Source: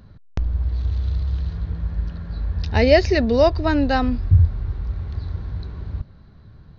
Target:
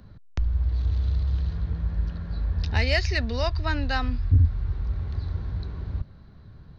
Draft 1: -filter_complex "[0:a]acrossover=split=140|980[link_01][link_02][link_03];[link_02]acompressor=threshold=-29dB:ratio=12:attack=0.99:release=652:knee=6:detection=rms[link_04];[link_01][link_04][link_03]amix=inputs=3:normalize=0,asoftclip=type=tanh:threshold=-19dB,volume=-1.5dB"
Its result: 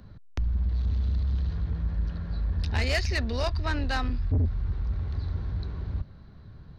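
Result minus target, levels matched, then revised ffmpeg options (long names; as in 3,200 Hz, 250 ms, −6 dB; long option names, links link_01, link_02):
soft clipping: distortion +10 dB
-filter_complex "[0:a]acrossover=split=140|980[link_01][link_02][link_03];[link_02]acompressor=threshold=-29dB:ratio=12:attack=0.99:release=652:knee=6:detection=rms[link_04];[link_01][link_04][link_03]amix=inputs=3:normalize=0,asoftclip=type=tanh:threshold=-8.5dB,volume=-1.5dB"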